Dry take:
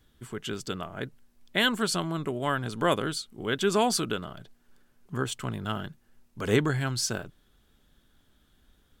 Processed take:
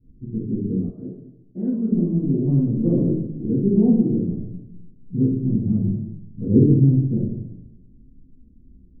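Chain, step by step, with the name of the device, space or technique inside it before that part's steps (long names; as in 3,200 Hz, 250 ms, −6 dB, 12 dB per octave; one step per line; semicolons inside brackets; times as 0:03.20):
next room (low-pass filter 300 Hz 24 dB per octave; convolution reverb RT60 0.90 s, pre-delay 10 ms, DRR −10 dB)
0:00.90–0:01.92: spectral tilt +3.5 dB per octave
level +3 dB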